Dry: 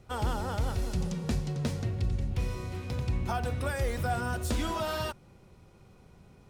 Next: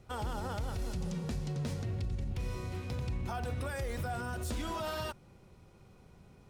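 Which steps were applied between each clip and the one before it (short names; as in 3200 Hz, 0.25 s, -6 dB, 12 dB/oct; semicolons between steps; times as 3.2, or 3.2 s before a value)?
limiter -26.5 dBFS, peak gain reduction 6 dB; gain -2 dB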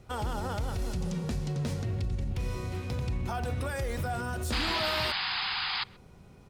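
painted sound noise, 4.52–5.84, 720–5100 Hz -36 dBFS; speakerphone echo 0.13 s, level -24 dB; gain +4 dB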